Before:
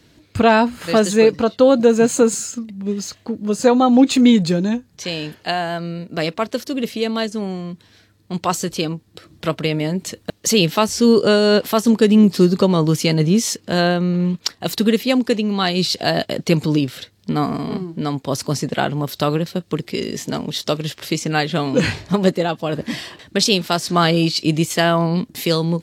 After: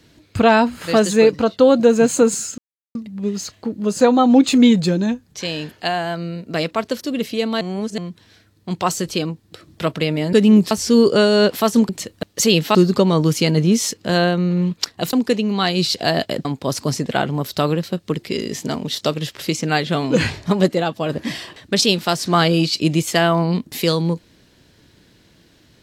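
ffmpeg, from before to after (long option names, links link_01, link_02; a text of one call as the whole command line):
ffmpeg -i in.wav -filter_complex "[0:a]asplit=10[link_01][link_02][link_03][link_04][link_05][link_06][link_07][link_08][link_09][link_10];[link_01]atrim=end=2.58,asetpts=PTS-STARTPTS,afade=type=out:start_time=2.576:duration=0.004:curve=hsin,apad=pad_dur=0.37[link_11];[link_02]atrim=start=2.58:end=7.242,asetpts=PTS-STARTPTS,afade=type=in:duration=0.004:curve=hsin[link_12];[link_03]atrim=start=7.238:end=7.612,asetpts=PTS-STARTPTS,areverse[link_13];[link_04]atrim=start=7.608:end=9.962[link_14];[link_05]atrim=start=11.998:end=12.382[link_15];[link_06]atrim=start=10.818:end=12.002[link_16];[link_07]atrim=start=9.958:end=10.822[link_17];[link_08]atrim=start=12.378:end=14.762[link_18];[link_09]atrim=start=15.128:end=16.452[link_19];[link_10]atrim=start=18.078[link_20];[link_11][link_12]concat=n=2:v=0:a=1[link_21];[link_21][link_13]acrossfade=duration=0.004:curve1=hsin:curve2=hsin[link_22];[link_22][link_14]acrossfade=duration=0.004:curve1=hsin:curve2=hsin[link_23];[link_23][link_15]acrossfade=duration=0.004:curve1=hsin:curve2=hsin[link_24];[link_24][link_16]acrossfade=duration=0.004:curve1=hsin:curve2=hsin[link_25];[link_25][link_17]acrossfade=duration=0.004:curve1=hsin:curve2=hsin[link_26];[link_26][link_18]acrossfade=duration=0.004:curve1=hsin:curve2=hsin[link_27];[link_27][link_19]acrossfade=duration=0.004:curve1=hsin:curve2=hsin[link_28];[link_28][link_20]acrossfade=duration=0.004:curve1=hsin:curve2=hsin" out.wav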